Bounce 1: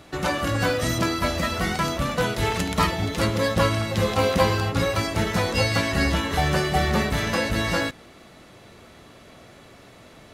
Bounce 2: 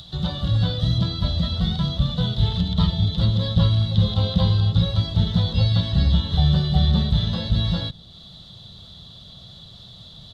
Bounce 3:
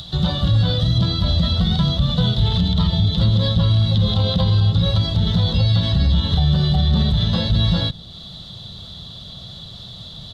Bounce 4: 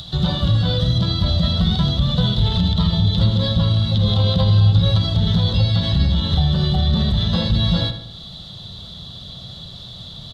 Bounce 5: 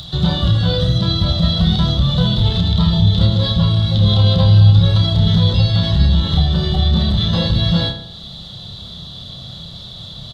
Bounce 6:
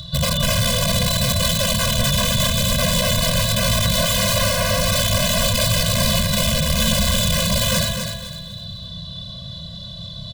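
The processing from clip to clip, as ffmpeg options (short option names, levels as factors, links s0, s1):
-filter_complex "[0:a]acrossover=split=3400[s0][s1];[s1]acompressor=threshold=0.00501:ratio=4:attack=1:release=60[s2];[s0][s2]amix=inputs=2:normalize=0,firequalizer=gain_entry='entry(170,0);entry(280,-20);entry(660,-17);entry(2400,-29);entry(3500,6);entry(5600,-15);entry(10000,-22)':delay=0.05:min_phase=1,acrossover=split=720[s3][s4];[s4]acompressor=mode=upward:threshold=0.00501:ratio=2.5[s5];[s3][s5]amix=inputs=2:normalize=0,volume=2.51"
-af "alimiter=level_in=5.62:limit=0.891:release=50:level=0:latency=1,volume=0.398"
-filter_complex "[0:a]asplit=2[s0][s1];[s1]adelay=78,lowpass=f=4200:p=1,volume=0.335,asplit=2[s2][s3];[s3]adelay=78,lowpass=f=4200:p=1,volume=0.48,asplit=2[s4][s5];[s5]adelay=78,lowpass=f=4200:p=1,volume=0.48,asplit=2[s6][s7];[s7]adelay=78,lowpass=f=4200:p=1,volume=0.48,asplit=2[s8][s9];[s9]adelay=78,lowpass=f=4200:p=1,volume=0.48[s10];[s0][s2][s4][s6][s8][s10]amix=inputs=6:normalize=0"
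-filter_complex "[0:a]asplit=2[s0][s1];[s1]adelay=30,volume=0.562[s2];[s0][s2]amix=inputs=2:normalize=0,volume=1.19"
-af "aeval=exprs='(mod(3.76*val(0)+1,2)-1)/3.76':c=same,aecho=1:1:252|504|756|1008:0.447|0.138|0.0429|0.0133,afftfilt=real='re*eq(mod(floor(b*sr/1024/240),2),0)':imag='im*eq(mod(floor(b*sr/1024/240),2),0)':win_size=1024:overlap=0.75"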